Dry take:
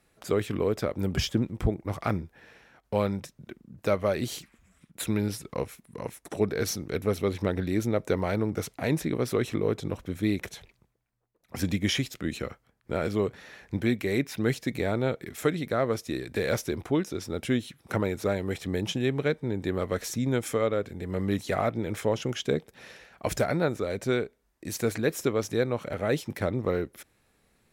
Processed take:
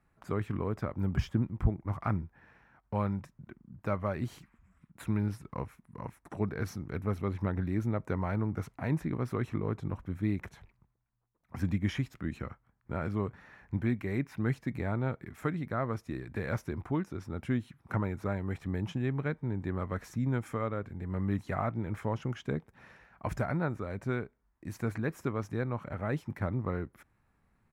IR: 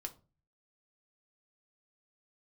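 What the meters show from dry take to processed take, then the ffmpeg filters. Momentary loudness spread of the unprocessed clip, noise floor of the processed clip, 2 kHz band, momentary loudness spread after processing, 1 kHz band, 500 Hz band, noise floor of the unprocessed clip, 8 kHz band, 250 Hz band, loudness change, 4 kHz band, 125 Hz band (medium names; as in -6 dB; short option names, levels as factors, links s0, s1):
9 LU, -73 dBFS, -6.5 dB, 8 LU, -3.5 dB, -10.0 dB, -71 dBFS, under -15 dB, -4.5 dB, -5.0 dB, -16.5 dB, -0.5 dB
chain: -af "firequalizer=gain_entry='entry(110,0);entry(470,-12);entry(960,-1);entry(3500,-18)':delay=0.05:min_phase=1"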